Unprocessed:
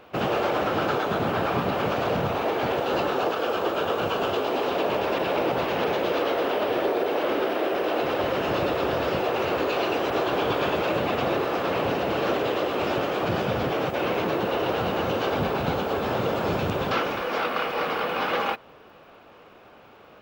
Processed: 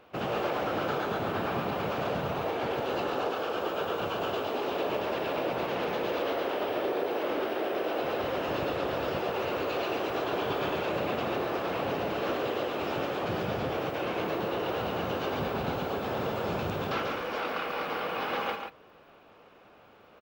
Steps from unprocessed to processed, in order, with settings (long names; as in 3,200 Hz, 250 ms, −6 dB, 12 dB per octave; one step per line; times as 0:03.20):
single-tap delay 141 ms −5.5 dB
level −7 dB